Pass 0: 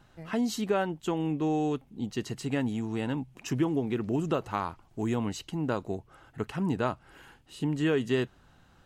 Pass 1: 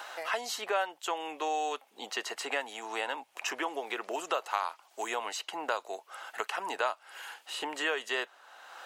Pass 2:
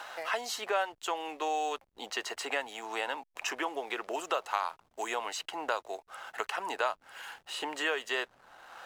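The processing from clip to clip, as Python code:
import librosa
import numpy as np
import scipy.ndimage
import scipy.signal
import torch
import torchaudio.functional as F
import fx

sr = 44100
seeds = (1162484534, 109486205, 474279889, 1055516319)

y1 = scipy.signal.sosfilt(scipy.signal.butter(4, 610.0, 'highpass', fs=sr, output='sos'), x)
y1 = fx.band_squash(y1, sr, depth_pct=70)
y1 = y1 * librosa.db_to_amplitude(4.5)
y2 = fx.backlash(y1, sr, play_db=-51.0)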